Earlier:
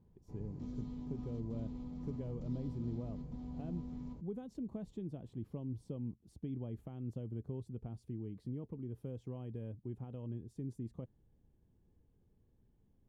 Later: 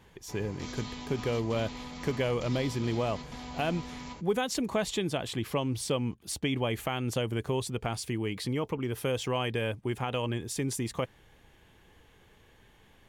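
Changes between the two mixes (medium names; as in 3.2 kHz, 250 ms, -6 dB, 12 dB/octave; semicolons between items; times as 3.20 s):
speech +8.5 dB; master: remove FFT filter 230 Hz 0 dB, 2.1 kHz -29 dB, 3.9 kHz -27 dB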